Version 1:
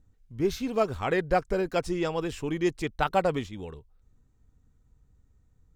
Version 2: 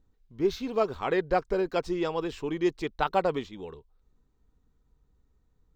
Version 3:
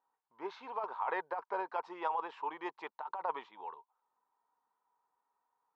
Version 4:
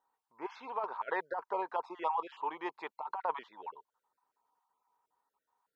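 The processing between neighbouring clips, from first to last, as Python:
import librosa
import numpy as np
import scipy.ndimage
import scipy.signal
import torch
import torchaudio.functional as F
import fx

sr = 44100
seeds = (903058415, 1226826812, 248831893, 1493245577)

y1 = fx.graphic_eq_15(x, sr, hz=(100, 400, 1000, 4000, 10000), db=(-9, 5, 5, 5, -12))
y1 = y1 * librosa.db_to_amplitude(-3.5)
y2 = fx.ladder_bandpass(y1, sr, hz=980.0, resonance_pct=75)
y2 = fx.over_compress(y2, sr, threshold_db=-40.0, ratio=-1.0)
y2 = y2 * librosa.db_to_amplitude(5.5)
y3 = fx.spec_dropout(y2, sr, seeds[0], share_pct=23)
y3 = y3 * librosa.db_to_amplitude(2.0)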